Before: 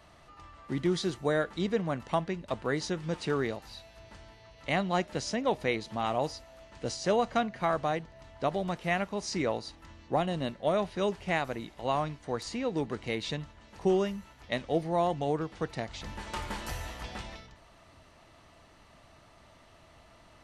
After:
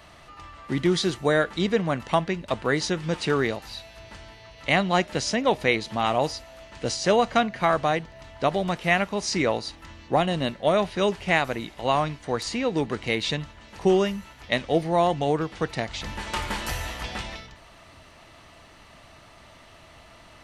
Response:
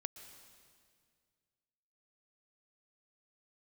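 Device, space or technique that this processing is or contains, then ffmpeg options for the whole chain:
presence and air boost: -af "equalizer=frequency=2600:width_type=o:width=1.8:gain=4,highshelf=frequency=9600:gain=4.5,volume=6dB"

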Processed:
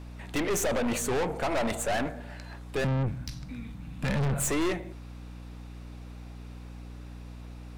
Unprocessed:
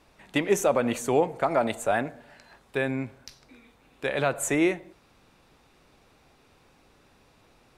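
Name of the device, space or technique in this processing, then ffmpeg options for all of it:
valve amplifier with mains hum: -filter_complex "[0:a]asettb=1/sr,asplit=3[link_01][link_02][link_03];[link_01]atrim=end=2.844[link_04];[link_02]atrim=start=2.84:end=4.5,asetpts=PTS-STARTPTS,afade=type=in:duration=0.004:curve=qsin,afade=type=out:start_time=1.656:duration=0.004:curve=qsin,lowshelf=frequency=260:width_type=q:width=3:gain=12[link_05];[link_03]atrim=start=4.496[link_06];[link_04][link_05]acrossfade=duration=0.004:curve1=hsin:curve2=qsin[link_07];[link_07][link_06]acrossfade=duration=0.004:curve1=qsin:curve2=hsin,aeval=exprs='(tanh(39.8*val(0)+0.4)-tanh(0.4))/39.8':channel_layout=same,aeval=exprs='val(0)+0.00398*(sin(2*PI*60*n/s)+sin(2*PI*2*60*n/s)/2+sin(2*PI*3*60*n/s)/3+sin(2*PI*4*60*n/s)/4+sin(2*PI*5*60*n/s)/5)':channel_layout=same,volume=6.5dB"

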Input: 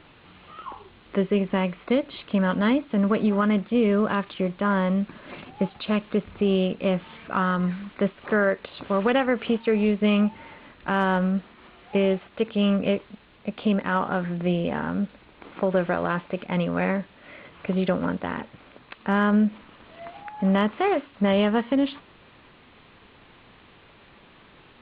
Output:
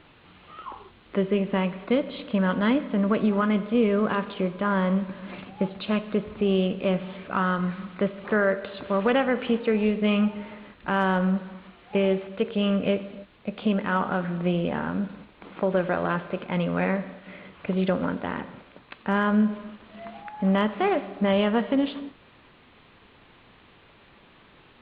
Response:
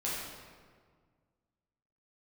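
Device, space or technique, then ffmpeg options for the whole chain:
keyed gated reverb: -filter_complex "[0:a]asplit=3[link_01][link_02][link_03];[1:a]atrim=start_sample=2205[link_04];[link_02][link_04]afir=irnorm=-1:irlink=0[link_05];[link_03]apad=whole_len=1094223[link_06];[link_05][link_06]sidechaingate=range=-33dB:threshold=-47dB:ratio=16:detection=peak,volume=-15.5dB[link_07];[link_01][link_07]amix=inputs=2:normalize=0,volume=-2dB"

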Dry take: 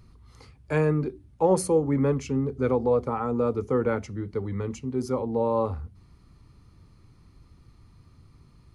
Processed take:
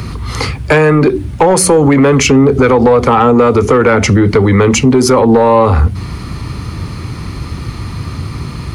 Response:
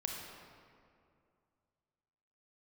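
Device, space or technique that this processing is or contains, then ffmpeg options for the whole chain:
mastering chain: -filter_complex "[0:a]highpass=58,equalizer=frequency=2200:width_type=o:width=1.8:gain=4,acrossover=split=290|890[link_01][link_02][link_03];[link_01]acompressor=threshold=-37dB:ratio=4[link_04];[link_02]acompressor=threshold=-31dB:ratio=4[link_05];[link_03]acompressor=threshold=-33dB:ratio=4[link_06];[link_04][link_05][link_06]amix=inputs=3:normalize=0,acompressor=threshold=-32dB:ratio=3,asoftclip=type=tanh:threshold=-27dB,asoftclip=type=hard:threshold=-29.5dB,alimiter=level_in=34.5dB:limit=-1dB:release=50:level=0:latency=1,volume=-1dB"

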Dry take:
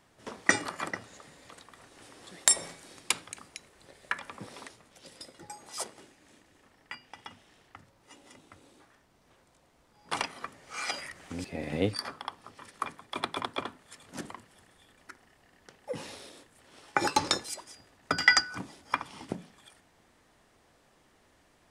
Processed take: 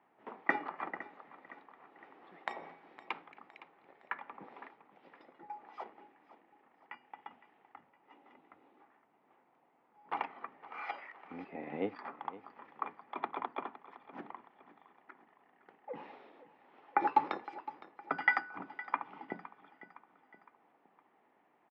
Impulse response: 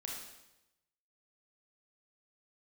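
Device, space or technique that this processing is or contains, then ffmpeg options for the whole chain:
bass cabinet: -filter_complex "[0:a]highpass=260,asettb=1/sr,asplit=3[link_01][link_02][link_03];[link_01]atrim=end=10.824[link_04];[link_02]atrim=start=10.82:end=11.24,asetpts=PTS-STARTPTS,afade=type=in:duration=0.004:curve=qsin,afade=type=out:start_time=0.416:duration=0.004:curve=qsin,bass=frequency=250:gain=-14,treble=frequency=4000:gain=3[link_05];[link_03]atrim=start=11.236[link_06];[link_04][link_05]acrossfade=duration=0.004:curve1=hsin:curve2=qsin[link_07];[link_07][link_06]acrossfade=duration=0.004:curve1=qsin:curve2=hsin,highpass=71,equalizer=frequency=110:width_type=q:width=4:gain=-5,equalizer=frequency=560:width_type=q:width=4:gain=-5,equalizer=frequency=820:width_type=q:width=4:gain=7,equalizer=frequency=1600:width_type=q:width=4:gain=-5,lowpass=frequency=2200:width=0.5412,lowpass=frequency=2200:width=1.3066,aecho=1:1:512|1024|1536|2048:0.15|0.0733|0.0359|0.0176,volume=-4.5dB"

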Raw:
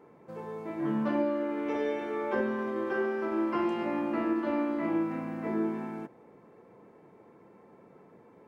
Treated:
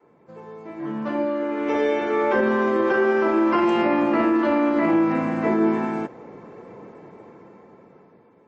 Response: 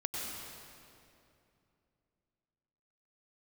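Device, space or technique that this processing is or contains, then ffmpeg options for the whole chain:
low-bitrate web radio: -af "adynamicequalizer=threshold=0.00562:dfrequency=160:dqfactor=0.74:tfrequency=160:tqfactor=0.74:attack=5:release=100:ratio=0.375:range=2:mode=cutabove:tftype=bell,dynaudnorm=framelen=480:gausssize=7:maxgain=15dB,alimiter=limit=-11.5dB:level=0:latency=1:release=21" -ar 22050 -c:a libmp3lame -b:a 32k

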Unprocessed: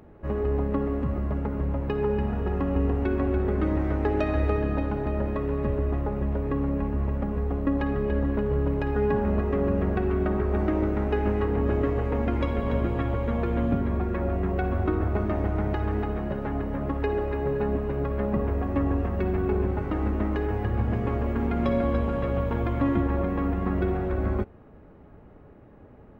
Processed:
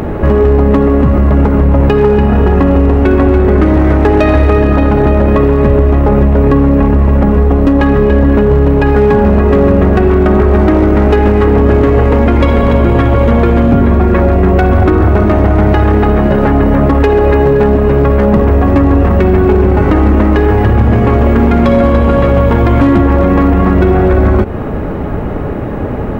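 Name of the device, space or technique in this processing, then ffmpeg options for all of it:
loud club master: -af "acompressor=threshold=-29dB:ratio=2.5,asoftclip=type=hard:threshold=-24.5dB,alimiter=level_in=34.5dB:limit=-1dB:release=50:level=0:latency=1,volume=-1dB"

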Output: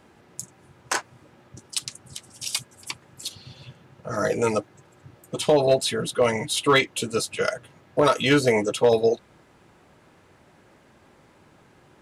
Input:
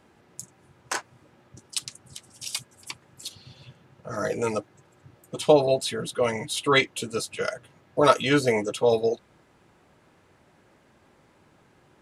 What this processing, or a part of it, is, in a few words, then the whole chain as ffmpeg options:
limiter into clipper: -af "alimiter=limit=-12dB:level=0:latency=1:release=137,asoftclip=type=hard:threshold=-14.5dB,volume=4dB"

